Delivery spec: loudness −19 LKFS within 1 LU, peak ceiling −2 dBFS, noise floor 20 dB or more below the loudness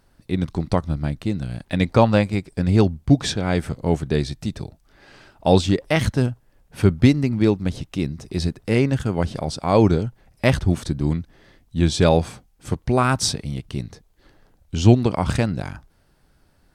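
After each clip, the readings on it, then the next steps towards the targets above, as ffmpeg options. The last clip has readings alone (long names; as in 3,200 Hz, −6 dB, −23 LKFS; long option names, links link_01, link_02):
integrated loudness −21.0 LKFS; sample peak −2.0 dBFS; target loudness −19.0 LKFS
→ -af "volume=2dB,alimiter=limit=-2dB:level=0:latency=1"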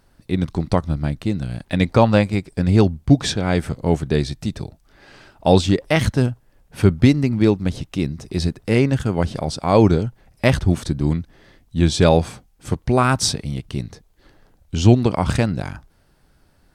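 integrated loudness −19.5 LKFS; sample peak −2.0 dBFS; background noise floor −59 dBFS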